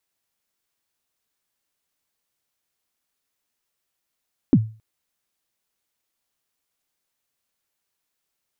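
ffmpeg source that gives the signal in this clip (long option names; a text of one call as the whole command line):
ffmpeg -f lavfi -i "aevalsrc='0.447*pow(10,-3*t/0.35)*sin(2*PI*(320*0.051/log(110/320)*(exp(log(110/320)*min(t,0.051)/0.051)-1)+110*max(t-0.051,0)))':duration=0.27:sample_rate=44100" out.wav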